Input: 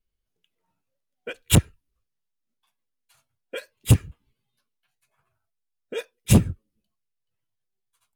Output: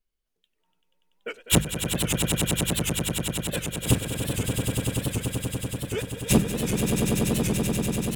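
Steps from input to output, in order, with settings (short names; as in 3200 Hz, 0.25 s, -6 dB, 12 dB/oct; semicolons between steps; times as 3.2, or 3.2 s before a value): bell 94 Hz -12 dB 0.76 oct; notches 50/100/150/200 Hz; on a send: swelling echo 96 ms, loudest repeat 8, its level -7 dB; on the sum: record warp 78 rpm, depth 160 cents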